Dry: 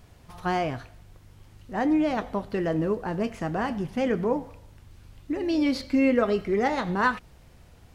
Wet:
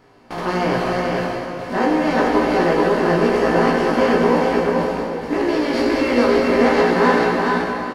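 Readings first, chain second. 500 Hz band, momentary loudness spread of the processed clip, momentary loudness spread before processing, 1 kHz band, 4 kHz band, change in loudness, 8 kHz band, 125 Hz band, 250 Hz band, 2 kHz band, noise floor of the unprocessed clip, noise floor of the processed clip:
+11.5 dB, 8 LU, 9 LU, +11.0 dB, +11.0 dB, +8.5 dB, can't be measured, +7.5 dB, +7.5 dB, +11.0 dB, −53 dBFS, −30 dBFS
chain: compressor on every frequency bin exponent 0.4
noise gate with hold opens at −17 dBFS
mains-hum notches 50/100/150/200/250 Hz
flanger 0.81 Hz, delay 2.3 ms, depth 3.4 ms, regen −71%
double-tracking delay 17 ms −2 dB
on a send: single-tap delay 430 ms −3 dB
on the sum: dense smooth reverb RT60 3.4 s, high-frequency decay 0.85×, DRR 0.5 dB
level +1.5 dB

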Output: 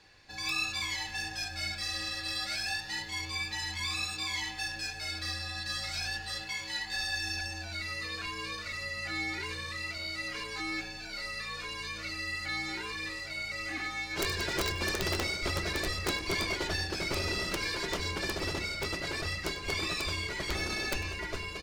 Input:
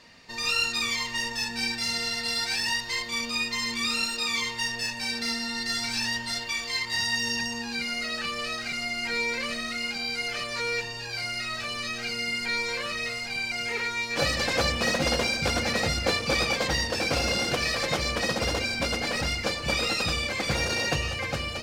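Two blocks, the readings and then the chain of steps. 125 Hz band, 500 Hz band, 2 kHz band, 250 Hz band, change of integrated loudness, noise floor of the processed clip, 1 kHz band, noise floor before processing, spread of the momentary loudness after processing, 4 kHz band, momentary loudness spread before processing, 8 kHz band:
−4.5 dB, −8.0 dB, −6.0 dB, −7.0 dB, −6.5 dB, −42 dBFS, −7.0 dB, −36 dBFS, 5 LU, −7.0 dB, 5 LU, −6.5 dB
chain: frequency shifter −150 Hz
wrap-around overflow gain 14.5 dB
echo with shifted repeats 98 ms, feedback 31%, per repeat +110 Hz, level −18 dB
level −6.5 dB

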